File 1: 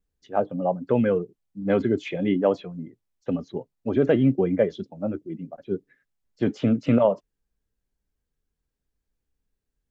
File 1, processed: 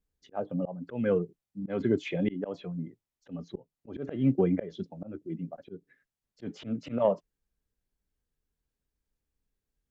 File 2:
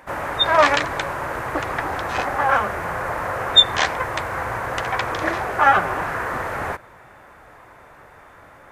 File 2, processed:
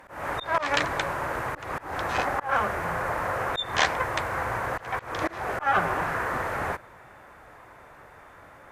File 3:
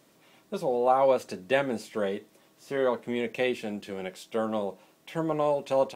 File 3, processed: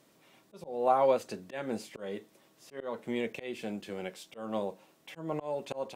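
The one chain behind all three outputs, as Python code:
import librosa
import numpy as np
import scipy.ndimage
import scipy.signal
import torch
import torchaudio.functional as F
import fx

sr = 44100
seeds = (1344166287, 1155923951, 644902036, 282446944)

y = fx.dynamic_eq(x, sr, hz=170.0, q=7.9, threshold_db=-45.0, ratio=4.0, max_db=5)
y = fx.auto_swell(y, sr, attack_ms=223.0)
y = fx.cheby_harmonics(y, sr, harmonics=(3, 5), levels_db=(-22, -44), full_scale_db=-5.0)
y = y * 10.0 ** (-1.0 / 20.0)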